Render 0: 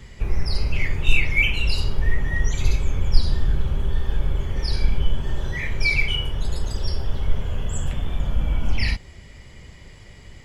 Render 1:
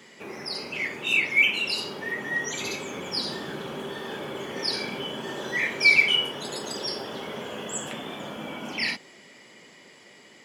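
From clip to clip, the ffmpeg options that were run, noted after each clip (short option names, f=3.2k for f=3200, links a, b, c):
-af "highpass=f=230:w=0.5412,highpass=f=230:w=1.3066,dynaudnorm=f=270:g=17:m=4.5dB"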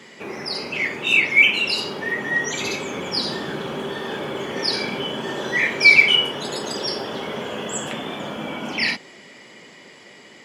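-af "highshelf=f=9.3k:g=-8.5,volume=6.5dB"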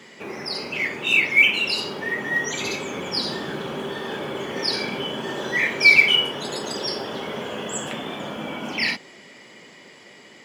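-af "acrusher=bits=9:mode=log:mix=0:aa=0.000001,volume=-1.5dB"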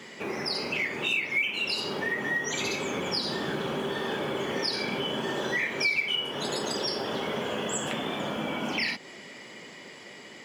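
-af "acompressor=threshold=-28dB:ratio=4,volume=1dB"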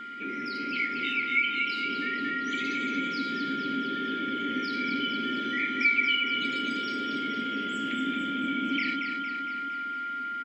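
-filter_complex "[0:a]asplit=3[a][b][c];[a]bandpass=f=270:t=q:w=8,volume=0dB[d];[b]bandpass=f=2.29k:t=q:w=8,volume=-6dB[e];[c]bandpass=f=3.01k:t=q:w=8,volume=-9dB[f];[d][e][f]amix=inputs=3:normalize=0,aeval=exprs='val(0)+0.00501*sin(2*PI*1400*n/s)':c=same,aecho=1:1:230|460|690|920|1150|1380|1610|1840:0.501|0.296|0.174|0.103|0.0607|0.0358|0.0211|0.0125,volume=8dB"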